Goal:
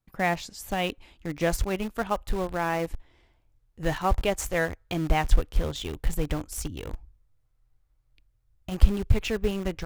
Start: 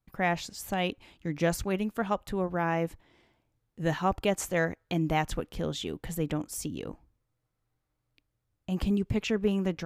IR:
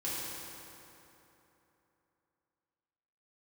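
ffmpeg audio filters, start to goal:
-filter_complex "[0:a]asubboost=boost=11:cutoff=59,asplit=2[s0][s1];[s1]acrusher=bits=4:mix=0:aa=0.000001,volume=0.299[s2];[s0][s2]amix=inputs=2:normalize=0"

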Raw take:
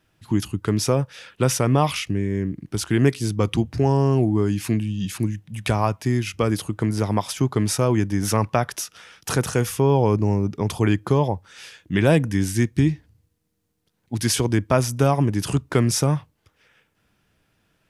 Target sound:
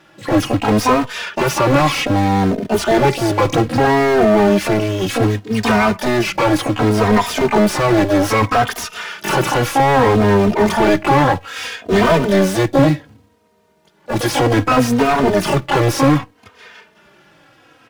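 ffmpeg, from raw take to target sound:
-filter_complex "[0:a]asplit=2[s0][s1];[s1]asetrate=88200,aresample=44100,atempo=0.5,volume=0.631[s2];[s0][s2]amix=inputs=2:normalize=0,acrusher=bits=5:mode=log:mix=0:aa=0.000001,asplit=2[s3][s4];[s4]highpass=f=720:p=1,volume=44.7,asoftclip=type=tanh:threshold=0.891[s5];[s3][s5]amix=inputs=2:normalize=0,lowpass=f=1300:p=1,volume=0.501,asplit=2[s6][s7];[s7]adelay=3,afreqshift=-0.64[s8];[s6][s8]amix=inputs=2:normalize=1"

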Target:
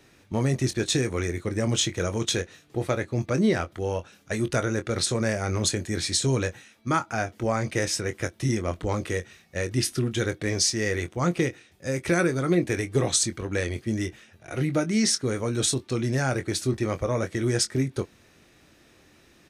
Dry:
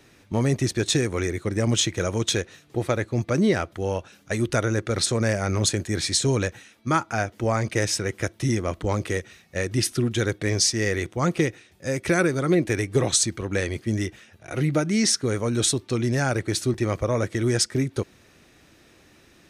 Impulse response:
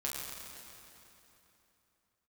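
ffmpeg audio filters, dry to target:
-filter_complex "[0:a]asplit=2[s0][s1];[s1]adelay=23,volume=0.316[s2];[s0][s2]amix=inputs=2:normalize=0,volume=0.75"

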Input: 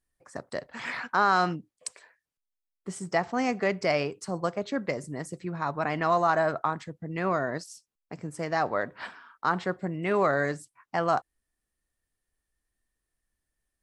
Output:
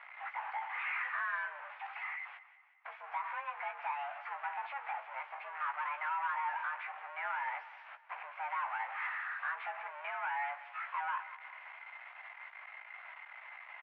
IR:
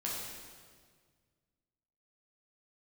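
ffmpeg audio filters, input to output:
-filter_complex "[0:a]aeval=exprs='val(0)+0.5*0.0251*sgn(val(0))':c=same,acompressor=threshold=0.0562:ratio=6,asoftclip=type=tanh:threshold=0.0316,asplit=2[s0][s1];[s1]adelay=16,volume=0.501[s2];[s0][s2]amix=inputs=2:normalize=0,aecho=1:1:183|366|549|732|915:0.158|0.0808|0.0412|0.021|0.0107,highpass=f=510:t=q:w=0.5412,highpass=f=510:t=q:w=1.307,lowpass=f=2200:t=q:w=0.5176,lowpass=f=2200:t=q:w=0.7071,lowpass=f=2200:t=q:w=1.932,afreqshift=280,volume=0.75"

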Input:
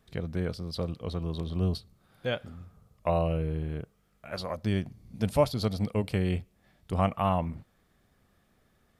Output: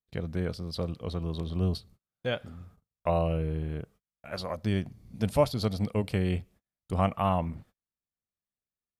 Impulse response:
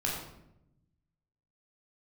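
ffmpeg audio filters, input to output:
-af "agate=range=0.0178:threshold=0.00224:ratio=16:detection=peak"

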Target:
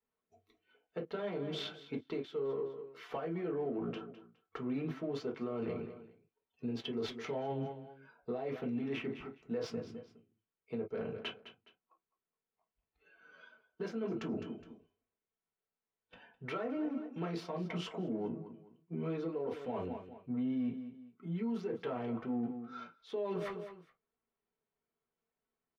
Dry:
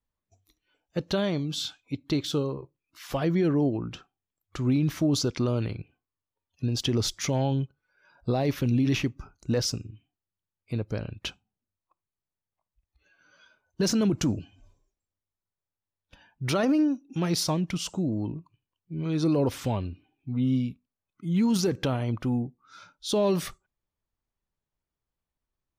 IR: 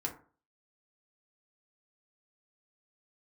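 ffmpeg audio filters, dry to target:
-filter_complex "[0:a]asplit=2[s0][s1];[s1]adynamicsmooth=sensitivity=5.5:basefreq=550,volume=0.841[s2];[s0][s2]amix=inputs=2:normalize=0,acrossover=split=220 3500:gain=0.0794 1 0.1[s3][s4][s5];[s3][s4][s5]amix=inputs=3:normalize=0,aecho=1:1:208|416:0.133|0.032[s6];[1:a]atrim=start_sample=2205,atrim=end_sample=3969,asetrate=66150,aresample=44100[s7];[s6][s7]afir=irnorm=-1:irlink=0,areverse,acompressor=threshold=0.0251:ratio=8,areverse,alimiter=level_in=2.37:limit=0.0631:level=0:latency=1:release=383,volume=0.422,volume=1.33"

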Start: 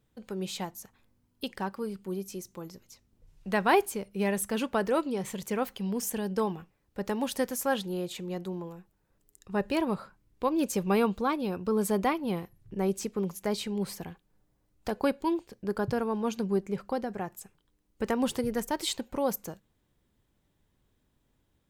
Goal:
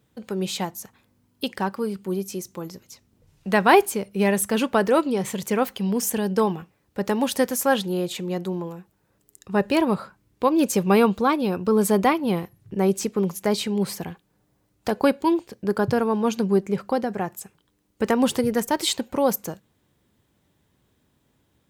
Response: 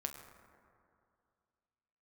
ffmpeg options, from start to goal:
-af "highpass=78,volume=2.51"

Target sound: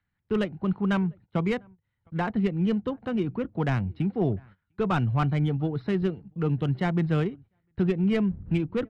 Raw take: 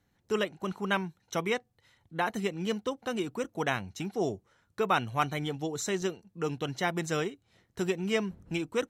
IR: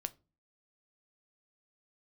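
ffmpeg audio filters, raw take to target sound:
-filter_complex "[0:a]aresample=11025,volume=11.2,asoftclip=hard,volume=0.0891,aresample=44100,asplit=2[s0][s1];[s1]adelay=699.7,volume=0.0398,highshelf=f=4000:g=-15.7[s2];[s0][s2]amix=inputs=2:normalize=0,acrossover=split=210|1200[s3][s4][s5];[s5]acompressor=mode=upward:threshold=0.00631:ratio=2.5[s6];[s3][s4][s6]amix=inputs=3:normalize=0,bass=f=250:g=15,treble=f=4000:g=-6,adynamicsmooth=sensitivity=3:basefreq=2400,agate=range=0.1:threshold=0.00501:ratio=16:detection=peak"

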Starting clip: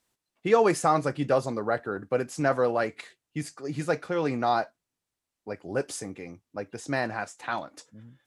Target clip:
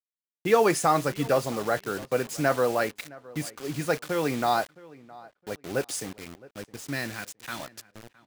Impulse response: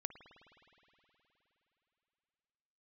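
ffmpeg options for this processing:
-filter_complex "[0:a]asettb=1/sr,asplit=3[s0][s1][s2];[s0]atrim=end=6.094[s3];[s1]atrim=start=6.09:end=7.6,asetpts=PTS-STARTPTS,afade=t=in:d=0.004:c=qsin,afade=t=out:st=1.506:d=0.004:c=qsin,equalizer=f=810:w=1:g=-13.5[s4];[s2]atrim=start=7.596[s5];[s3][s4]acrossfade=d=0.004:c1=hsin:c2=qsin[s6];[s6][s5]acrossfade=d=0.004:c1=qsin:c2=hsin,acrusher=bits=6:mix=0:aa=0.000001,asplit=2[s7][s8];[s8]adelay=665,lowpass=f=3000:p=1,volume=0.0891,asplit=2[s9][s10];[s10]adelay=665,lowpass=f=3000:p=1,volume=0.22[s11];[s9][s11]amix=inputs=2:normalize=0[s12];[s7][s12]amix=inputs=2:normalize=0,adynamicequalizer=threshold=0.01:dfrequency=1600:dqfactor=0.7:tfrequency=1600:tqfactor=0.7:attack=5:release=100:ratio=0.375:range=2:mode=boostabove:tftype=highshelf"

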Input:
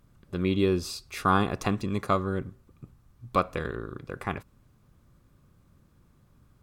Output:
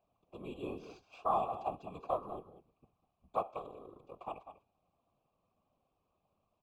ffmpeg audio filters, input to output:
-filter_complex "[0:a]asuperstop=centerf=1700:order=8:qfactor=1.1,acrossover=split=130|1300|2000[s0][s1][s2][s3];[s0]acontrast=86[s4];[s3]alimiter=level_in=2.99:limit=0.0631:level=0:latency=1:release=241,volume=0.335[s5];[s4][s1][s2][s5]amix=inputs=4:normalize=0,bandreject=f=410.2:t=h:w=4,bandreject=f=820.4:t=h:w=4,bandreject=f=1230.6:t=h:w=4,bandreject=f=1640.8:t=h:w=4,bandreject=f=2051:t=h:w=4,bandreject=f=2461.2:t=h:w=4,bandreject=f=2871.4:t=h:w=4,bandreject=f=3281.6:t=h:w=4,bandreject=f=3691.8:t=h:w=4,bandreject=f=4102:t=h:w=4,bandreject=f=4512.2:t=h:w=4,bandreject=f=4922.4:t=h:w=4,bandreject=f=5332.6:t=h:w=4,bandreject=f=5742.8:t=h:w=4,bandreject=f=6153:t=h:w=4,bandreject=f=6563.2:t=h:w=4,bandreject=f=6973.4:t=h:w=4,bandreject=f=7383.6:t=h:w=4,bandreject=f=7793.8:t=h:w=4,bandreject=f=8204:t=h:w=4,bandreject=f=8614.2:t=h:w=4,bandreject=f=9024.4:t=h:w=4,bandreject=f=9434.6:t=h:w=4,bandreject=f=9844.8:t=h:w=4,bandreject=f=10255:t=h:w=4,bandreject=f=10665.2:t=h:w=4,bandreject=f=11075.4:t=h:w=4,bandreject=f=11485.6:t=h:w=4,bandreject=f=11895.8:t=h:w=4,bandreject=f=12306:t=h:w=4,bandreject=f=12716.2:t=h:w=4,bandreject=f=13126.4:t=h:w=4,bandreject=f=13536.6:t=h:w=4,bandreject=f=13946.8:t=h:w=4,bandreject=f=14357:t=h:w=4,bandreject=f=14767.2:t=h:w=4,bandreject=f=15177.4:t=h:w=4,bandreject=f=15587.6:t=h:w=4,bandreject=f=15997.8:t=h:w=4,acrusher=samples=4:mix=1:aa=0.000001,asplit=3[s6][s7][s8];[s6]bandpass=f=730:t=q:w=8,volume=1[s9];[s7]bandpass=f=1090:t=q:w=8,volume=0.501[s10];[s8]bandpass=f=2440:t=q:w=8,volume=0.355[s11];[s9][s10][s11]amix=inputs=3:normalize=0,aecho=1:1:197:0.237,afftfilt=real='hypot(re,im)*cos(2*PI*random(0))':imag='hypot(re,im)*sin(2*PI*random(1))':win_size=512:overlap=0.75,volume=2.51"

